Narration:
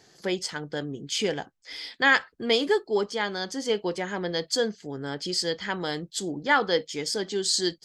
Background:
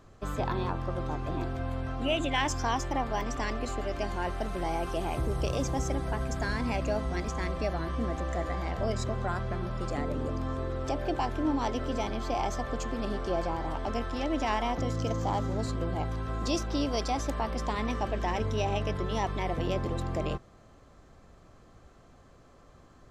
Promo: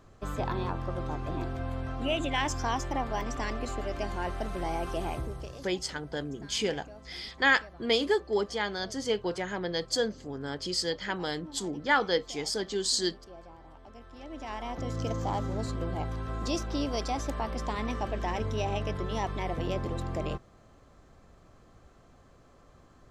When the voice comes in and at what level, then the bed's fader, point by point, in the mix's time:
5.40 s, -3.0 dB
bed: 5.09 s -1 dB
5.7 s -18.5 dB
13.94 s -18.5 dB
15 s -1.5 dB

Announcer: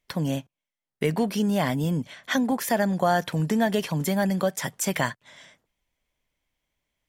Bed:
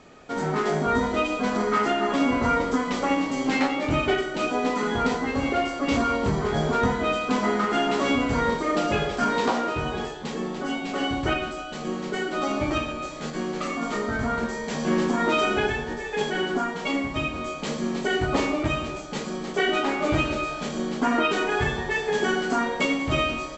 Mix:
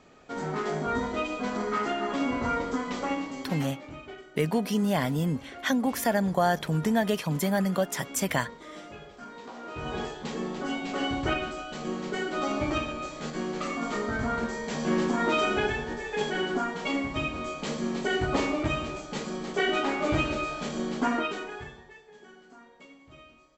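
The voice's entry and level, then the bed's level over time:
3.35 s, -2.0 dB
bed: 3.08 s -6 dB
4.02 s -20.5 dB
9.49 s -20.5 dB
9.95 s -3 dB
21.06 s -3 dB
22.08 s -28 dB

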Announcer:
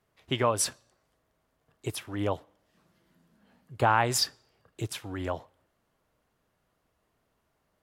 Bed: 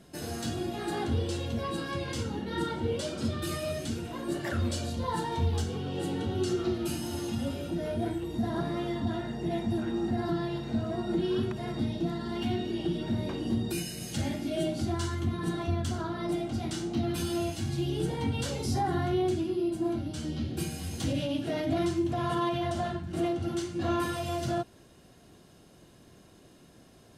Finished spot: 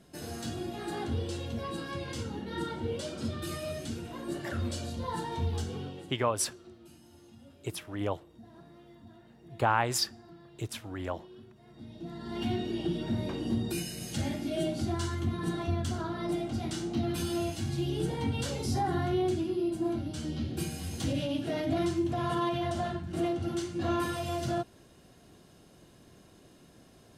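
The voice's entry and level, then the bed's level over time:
5.80 s, -3.0 dB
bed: 5.84 s -3.5 dB
6.18 s -22 dB
11.64 s -22 dB
12.42 s -1 dB

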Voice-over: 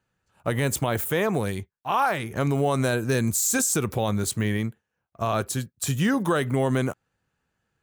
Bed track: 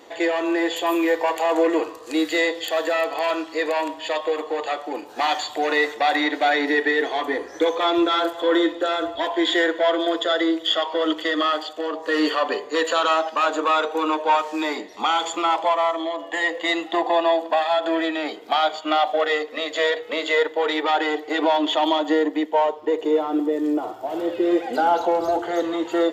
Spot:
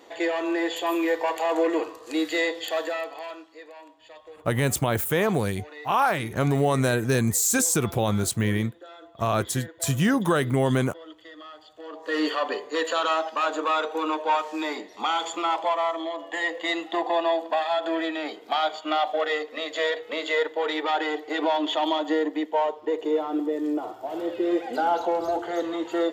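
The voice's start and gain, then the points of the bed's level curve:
4.00 s, +1.0 dB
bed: 2.76 s -4 dB
3.68 s -22.5 dB
11.56 s -22.5 dB
12.15 s -4.5 dB

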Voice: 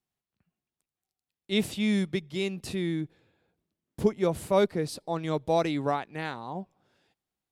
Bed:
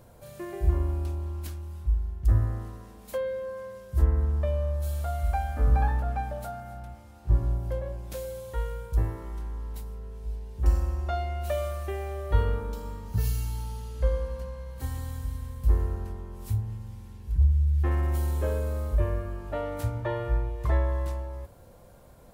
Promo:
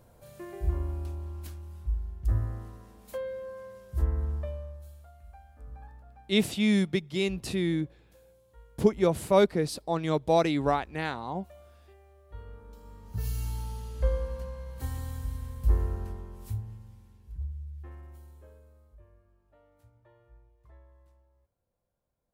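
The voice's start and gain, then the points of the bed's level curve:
4.80 s, +2.0 dB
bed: 4.33 s -5 dB
5.13 s -23.5 dB
12.26 s -23.5 dB
13.47 s -1.5 dB
16.1 s -1.5 dB
19.02 s -31 dB

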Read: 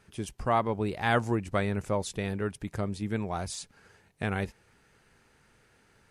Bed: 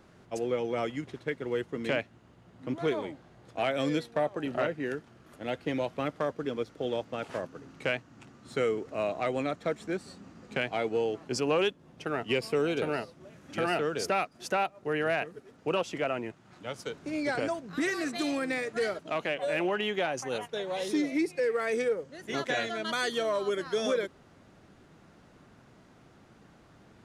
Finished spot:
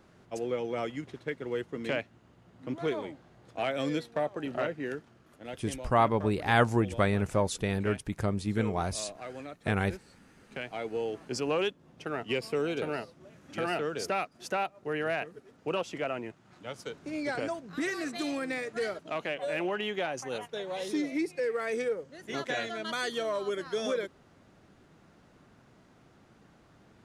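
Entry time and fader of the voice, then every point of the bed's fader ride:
5.45 s, +2.0 dB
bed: 4.98 s -2 dB
5.84 s -11.5 dB
10.18 s -11.5 dB
11.17 s -2.5 dB

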